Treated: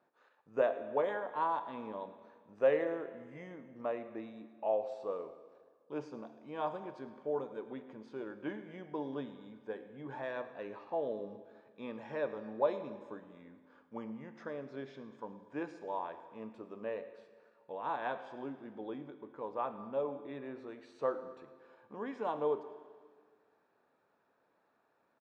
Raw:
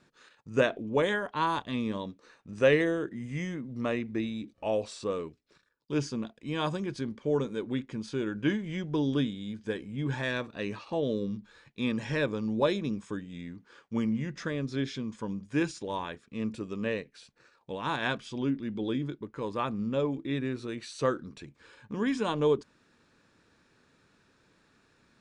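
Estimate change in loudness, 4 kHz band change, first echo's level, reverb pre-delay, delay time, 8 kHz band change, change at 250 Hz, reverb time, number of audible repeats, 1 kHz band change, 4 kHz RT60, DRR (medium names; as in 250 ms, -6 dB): -7.5 dB, -19.0 dB, -19.0 dB, 23 ms, 108 ms, under -25 dB, -13.5 dB, 1.7 s, 1, -3.0 dB, 1.6 s, 9.5 dB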